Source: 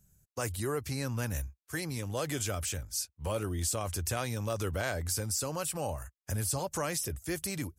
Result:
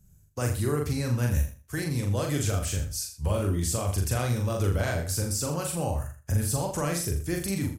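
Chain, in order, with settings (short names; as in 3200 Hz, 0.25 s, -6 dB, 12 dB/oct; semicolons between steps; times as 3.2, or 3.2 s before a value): low shelf 300 Hz +9 dB; doubler 41 ms -3 dB; feedback echo 81 ms, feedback 19%, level -10.5 dB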